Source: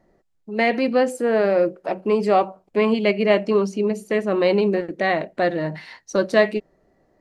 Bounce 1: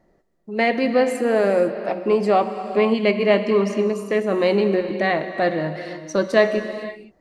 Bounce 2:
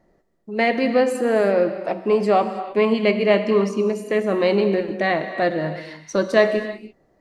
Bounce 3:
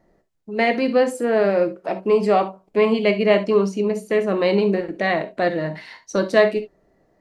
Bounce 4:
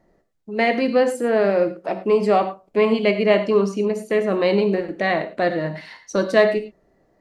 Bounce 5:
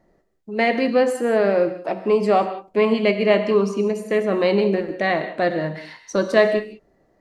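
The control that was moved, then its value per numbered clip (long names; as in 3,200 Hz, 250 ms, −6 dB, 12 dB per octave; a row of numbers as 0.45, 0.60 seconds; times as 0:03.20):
reverb whose tail is shaped and stops, gate: 530, 350, 90, 130, 210 milliseconds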